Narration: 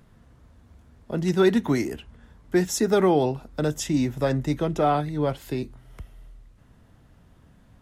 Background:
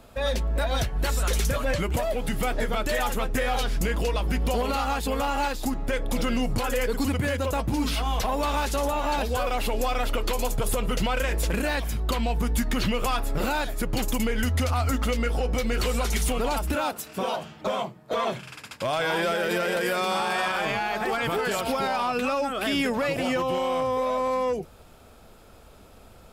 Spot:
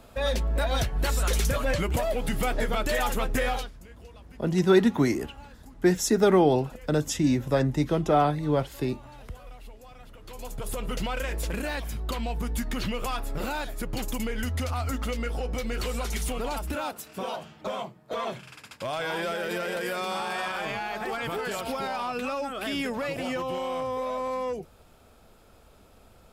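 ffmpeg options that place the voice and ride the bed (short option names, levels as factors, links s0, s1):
-filter_complex "[0:a]adelay=3300,volume=1[s0];[1:a]volume=7.94,afade=t=out:st=3.47:d=0.24:silence=0.0707946,afade=t=in:st=10.2:d=0.7:silence=0.11885[s1];[s0][s1]amix=inputs=2:normalize=0"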